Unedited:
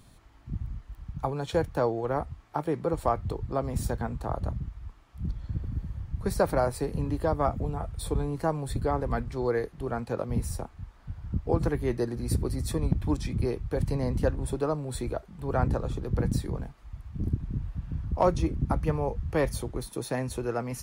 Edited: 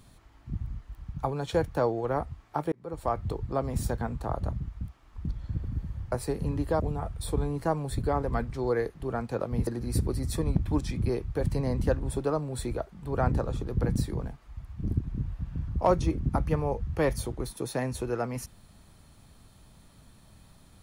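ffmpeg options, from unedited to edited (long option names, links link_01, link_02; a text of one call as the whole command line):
ffmpeg -i in.wav -filter_complex "[0:a]asplit=7[link_01][link_02][link_03][link_04][link_05][link_06][link_07];[link_01]atrim=end=2.72,asetpts=PTS-STARTPTS,afade=type=out:start_time=2.716:duration=0.004:curve=hsin[link_08];[link_02]atrim=start=2.72:end=4.812,asetpts=PTS-STARTPTS,afade=type=in:duration=0.52[link_09];[link_03]atrim=start=4.808:end=5.252,asetpts=PTS-STARTPTS,areverse[link_10];[link_04]atrim=start=5.248:end=6.122[link_11];[link_05]atrim=start=6.648:end=7.332[link_12];[link_06]atrim=start=7.578:end=10.452[link_13];[link_07]atrim=start=12.028[link_14];[link_08][link_09]concat=n=2:v=0:a=1[link_15];[link_15][link_10]acrossfade=duration=0.004:curve1=hsin:curve2=hsin[link_16];[link_16][link_11]acrossfade=duration=0.004:curve1=hsin:curve2=hsin[link_17];[link_17][link_12]acrossfade=duration=0.004:curve1=hsin:curve2=hsin[link_18];[link_18][link_13]acrossfade=duration=0.004:curve1=hsin:curve2=hsin[link_19];[link_19][link_14]acrossfade=duration=0.004:curve1=hsin:curve2=hsin" out.wav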